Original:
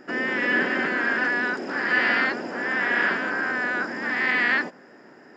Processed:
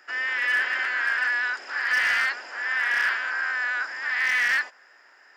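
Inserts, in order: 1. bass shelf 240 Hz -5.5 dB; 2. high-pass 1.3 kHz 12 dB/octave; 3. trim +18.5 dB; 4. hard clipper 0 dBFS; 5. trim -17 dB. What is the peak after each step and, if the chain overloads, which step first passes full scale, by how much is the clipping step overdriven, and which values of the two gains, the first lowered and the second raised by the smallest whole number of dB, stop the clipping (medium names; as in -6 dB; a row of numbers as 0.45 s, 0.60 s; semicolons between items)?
-10.0 dBFS, -10.5 dBFS, +8.0 dBFS, 0.0 dBFS, -17.0 dBFS; step 3, 8.0 dB; step 3 +10.5 dB, step 5 -9 dB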